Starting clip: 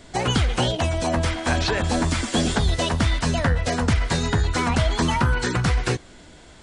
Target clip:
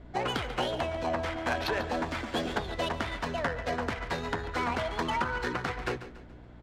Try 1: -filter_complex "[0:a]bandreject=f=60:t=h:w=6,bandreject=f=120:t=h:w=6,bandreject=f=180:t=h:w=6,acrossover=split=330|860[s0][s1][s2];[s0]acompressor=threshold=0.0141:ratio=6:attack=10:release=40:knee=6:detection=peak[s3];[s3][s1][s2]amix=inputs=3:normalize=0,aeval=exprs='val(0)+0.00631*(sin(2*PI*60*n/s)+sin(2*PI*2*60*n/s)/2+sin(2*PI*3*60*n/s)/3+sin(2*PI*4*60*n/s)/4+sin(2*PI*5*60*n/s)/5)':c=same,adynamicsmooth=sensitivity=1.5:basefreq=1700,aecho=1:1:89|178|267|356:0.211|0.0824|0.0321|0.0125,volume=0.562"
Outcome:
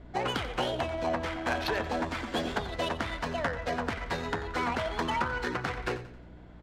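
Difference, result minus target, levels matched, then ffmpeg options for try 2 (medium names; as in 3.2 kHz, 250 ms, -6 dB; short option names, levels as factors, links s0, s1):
echo 53 ms early
-filter_complex "[0:a]bandreject=f=60:t=h:w=6,bandreject=f=120:t=h:w=6,bandreject=f=180:t=h:w=6,acrossover=split=330|860[s0][s1][s2];[s0]acompressor=threshold=0.0141:ratio=6:attack=10:release=40:knee=6:detection=peak[s3];[s3][s1][s2]amix=inputs=3:normalize=0,aeval=exprs='val(0)+0.00631*(sin(2*PI*60*n/s)+sin(2*PI*2*60*n/s)/2+sin(2*PI*3*60*n/s)/3+sin(2*PI*4*60*n/s)/4+sin(2*PI*5*60*n/s)/5)':c=same,adynamicsmooth=sensitivity=1.5:basefreq=1700,aecho=1:1:142|284|426|568:0.211|0.0824|0.0321|0.0125,volume=0.562"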